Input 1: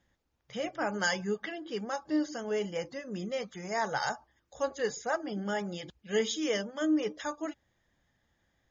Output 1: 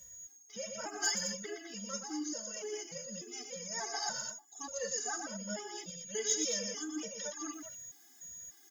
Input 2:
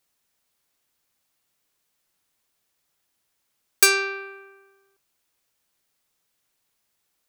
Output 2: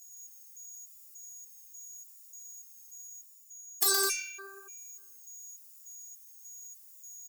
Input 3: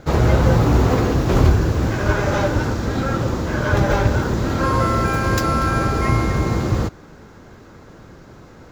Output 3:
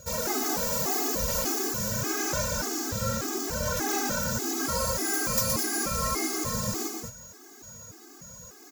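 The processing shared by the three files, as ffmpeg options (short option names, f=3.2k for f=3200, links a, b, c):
-af "highpass=42,aemphasis=mode=production:type=75fm,afftfilt=real='re*lt(hypot(re,im),0.708)':imag='im*lt(hypot(re,im),0.708)':win_size=1024:overlap=0.75,highshelf=f=4.6k:t=q:w=1.5:g=6.5,areverse,acompressor=mode=upward:threshold=-37dB:ratio=2.5,areverse,aeval=exprs='val(0)+0.00631*sin(2*PI*6700*n/s)':c=same,asoftclip=type=tanh:threshold=-8dB,flanger=delay=1.7:depth=7.9:regen=42:speed=0.82:shape=sinusoidal,aecho=1:1:40|48|120|186|210:0.133|0.126|0.562|0.112|0.447,afftfilt=real='re*gt(sin(2*PI*1.7*pts/sr)*(1-2*mod(floor(b*sr/1024/220),2)),0)':imag='im*gt(sin(2*PI*1.7*pts/sr)*(1-2*mod(floor(b*sr/1024/220),2)),0)':win_size=1024:overlap=0.75,volume=-3.5dB"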